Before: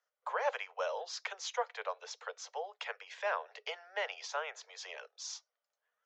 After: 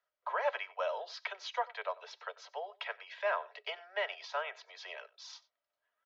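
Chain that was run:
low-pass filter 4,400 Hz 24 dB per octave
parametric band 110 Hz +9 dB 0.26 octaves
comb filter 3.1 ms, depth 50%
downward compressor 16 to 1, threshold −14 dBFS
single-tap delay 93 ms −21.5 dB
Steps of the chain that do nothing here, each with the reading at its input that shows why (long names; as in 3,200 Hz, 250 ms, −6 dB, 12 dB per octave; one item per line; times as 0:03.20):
parametric band 110 Hz: nothing at its input below 380 Hz
downward compressor, threshold −14 dBFS: peak of its input −19.5 dBFS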